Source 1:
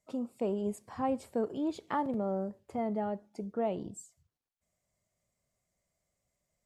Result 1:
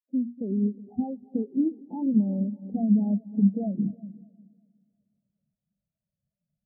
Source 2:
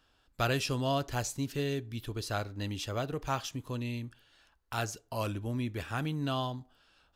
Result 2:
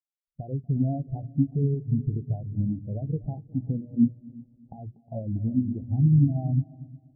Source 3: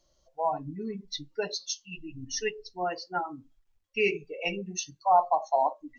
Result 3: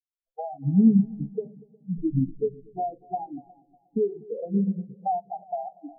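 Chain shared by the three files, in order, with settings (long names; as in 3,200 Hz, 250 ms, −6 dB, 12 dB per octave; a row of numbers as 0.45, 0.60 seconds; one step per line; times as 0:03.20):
camcorder AGC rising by 19 dB per second
elliptic low-pass filter 810 Hz, stop band 40 dB
mains-hum notches 60/120/180/240/300/360 Hz
downward compressor 12 to 1, threshold −31 dBFS
parametric band 180 Hz +7.5 dB 1.1 octaves
on a send: echo machine with several playback heads 120 ms, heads second and third, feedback 65%, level −10.5 dB
on the sum: every bin expanded away from the loudest bin 2.5 to 1
loudness normalisation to −27 LKFS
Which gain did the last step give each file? +6.0, +4.5, +11.5 decibels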